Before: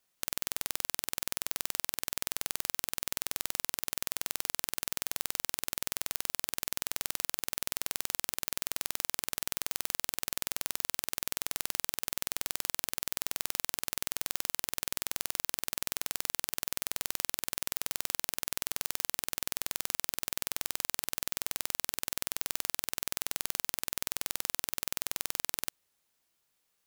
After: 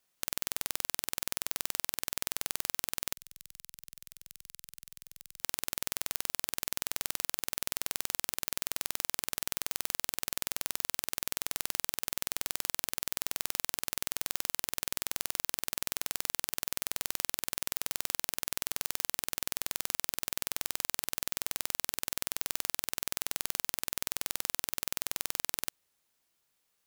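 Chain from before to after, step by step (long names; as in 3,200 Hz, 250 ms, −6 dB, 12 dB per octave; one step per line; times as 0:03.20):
0:03.13–0:05.41: guitar amp tone stack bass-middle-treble 6-0-2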